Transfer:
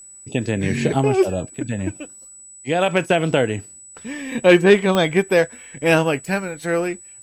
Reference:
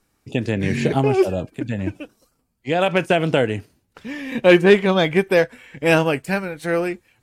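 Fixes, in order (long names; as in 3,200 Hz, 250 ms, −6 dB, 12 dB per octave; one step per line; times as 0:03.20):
click removal
notch filter 7,900 Hz, Q 30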